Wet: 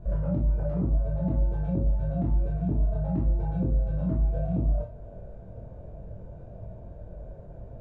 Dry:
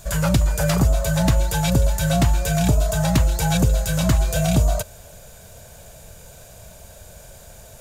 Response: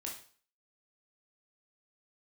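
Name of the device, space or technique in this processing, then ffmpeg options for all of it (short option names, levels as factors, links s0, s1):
television next door: -filter_complex "[0:a]acompressor=threshold=0.0355:ratio=4,lowpass=460[s0];[1:a]atrim=start_sample=2205[s1];[s0][s1]afir=irnorm=-1:irlink=0,volume=2"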